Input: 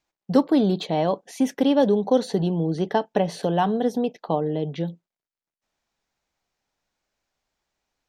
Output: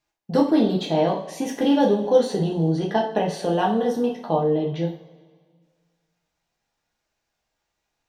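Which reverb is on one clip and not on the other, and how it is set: two-slope reverb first 0.42 s, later 1.8 s, from -18 dB, DRR -2.5 dB; trim -2.5 dB

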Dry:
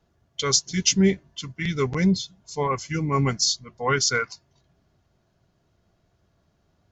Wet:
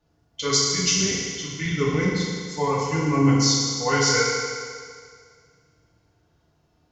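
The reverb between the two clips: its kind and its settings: FDN reverb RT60 2 s, low-frequency decay 0.8×, high-frequency decay 0.95×, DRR -6.5 dB; trim -5 dB

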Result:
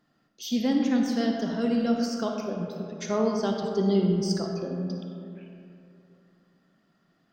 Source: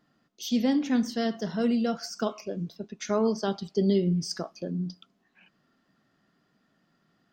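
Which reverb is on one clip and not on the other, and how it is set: algorithmic reverb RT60 2.8 s, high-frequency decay 0.4×, pre-delay 15 ms, DRR 2 dB; trim -1 dB

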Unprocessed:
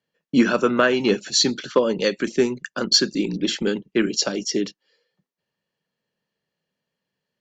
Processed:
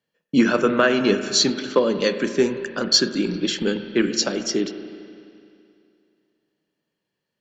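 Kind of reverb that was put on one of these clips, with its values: spring tank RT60 2.5 s, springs 35/43 ms, chirp 65 ms, DRR 8.5 dB

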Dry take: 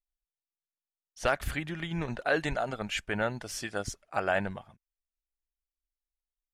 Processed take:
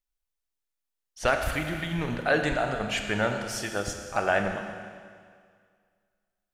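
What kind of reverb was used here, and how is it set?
Schroeder reverb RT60 2 s, combs from 26 ms, DRR 4.5 dB; trim +3 dB

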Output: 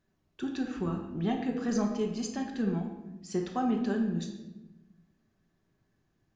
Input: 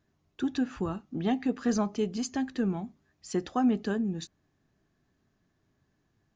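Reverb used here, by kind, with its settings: simulated room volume 490 m³, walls mixed, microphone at 1.1 m; trim -4 dB

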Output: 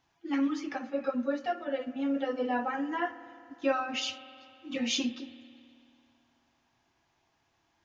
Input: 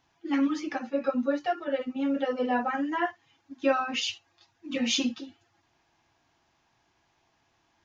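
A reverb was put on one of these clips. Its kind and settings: spring tank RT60 2.5 s, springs 54 ms, chirp 75 ms, DRR 14 dB; trim -3.5 dB

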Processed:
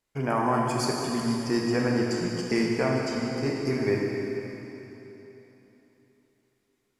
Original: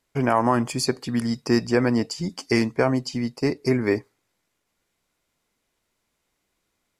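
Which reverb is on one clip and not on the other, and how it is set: plate-style reverb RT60 3.5 s, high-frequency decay 0.95×, DRR -2.5 dB; trim -7.5 dB

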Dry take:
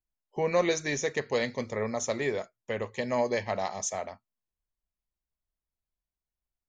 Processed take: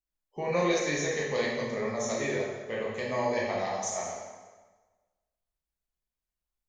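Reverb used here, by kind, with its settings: plate-style reverb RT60 1.3 s, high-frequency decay 0.85×, DRR -5 dB; trim -5.5 dB

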